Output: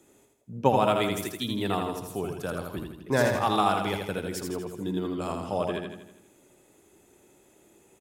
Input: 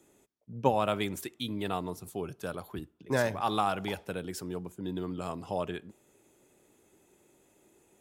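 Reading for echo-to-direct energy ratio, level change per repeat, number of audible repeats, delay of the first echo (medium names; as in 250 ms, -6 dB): -3.0 dB, -5.5 dB, 6, 81 ms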